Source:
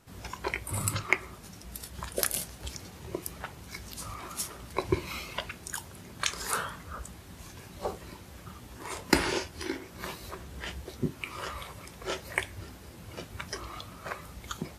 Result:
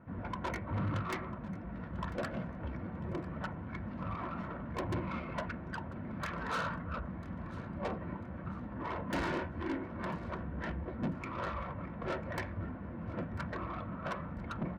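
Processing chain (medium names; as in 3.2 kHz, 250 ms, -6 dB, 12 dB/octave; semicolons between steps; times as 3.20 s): low-pass 1.7 kHz 24 dB/octave; peaking EQ 200 Hz +7 dB 0.66 oct; hum notches 60/120/180 Hz; valve stage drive 37 dB, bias 0.35; comb of notches 410 Hz; on a send: feedback delay 995 ms, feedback 33%, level -19 dB; on the sum: trim +6.5 dB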